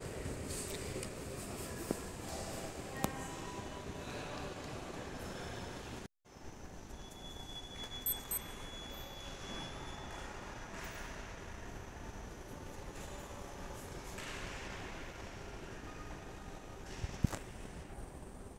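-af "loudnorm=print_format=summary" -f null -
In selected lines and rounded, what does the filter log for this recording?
Input Integrated:    -44.7 LUFS
Input True Peak:     -11.1 dBTP
Input LRA:             4.4 LU
Input Threshold:     -54.8 LUFS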